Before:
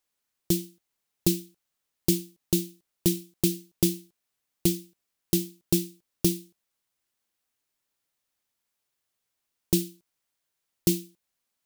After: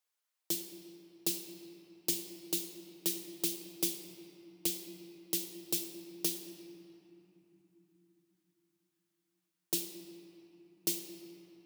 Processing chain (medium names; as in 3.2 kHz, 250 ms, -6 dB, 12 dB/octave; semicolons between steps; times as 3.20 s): high-pass 540 Hz 12 dB/octave; reverberation RT60 3.3 s, pre-delay 6 ms, DRR 3.5 dB; trim -5.5 dB